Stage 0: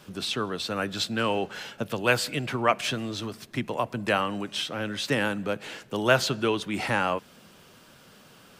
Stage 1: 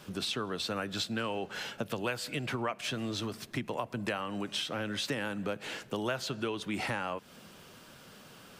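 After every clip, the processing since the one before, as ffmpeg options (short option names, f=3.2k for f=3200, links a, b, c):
-af "acompressor=threshold=-31dB:ratio=6"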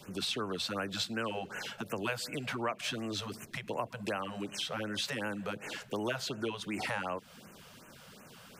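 -filter_complex "[0:a]acrossover=split=240|1000|6200[a][b][c][d];[a]alimiter=level_in=16dB:limit=-24dB:level=0:latency=1,volume=-16dB[e];[e][b][c][d]amix=inputs=4:normalize=0,afftfilt=real='re*(1-between(b*sr/1024,270*pow(4400/270,0.5+0.5*sin(2*PI*2.7*pts/sr))/1.41,270*pow(4400/270,0.5+0.5*sin(2*PI*2.7*pts/sr))*1.41))':imag='im*(1-between(b*sr/1024,270*pow(4400/270,0.5+0.5*sin(2*PI*2.7*pts/sr))/1.41,270*pow(4400/270,0.5+0.5*sin(2*PI*2.7*pts/sr))*1.41))':win_size=1024:overlap=0.75"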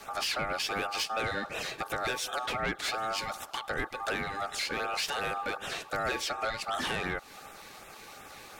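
-af "asoftclip=type=tanh:threshold=-31dB,aeval=exprs='val(0)*sin(2*PI*1000*n/s)':c=same,volume=8.5dB"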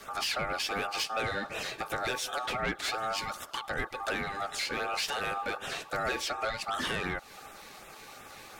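-af "flanger=delay=0.6:depth=8.8:regen=-64:speed=0.29:shape=sinusoidal,volume=4dB"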